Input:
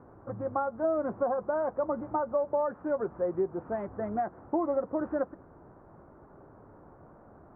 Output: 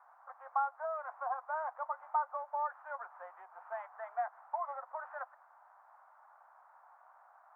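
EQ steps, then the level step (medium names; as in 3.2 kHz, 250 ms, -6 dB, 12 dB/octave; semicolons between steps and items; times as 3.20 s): steep high-pass 750 Hz 48 dB/octave; 0.0 dB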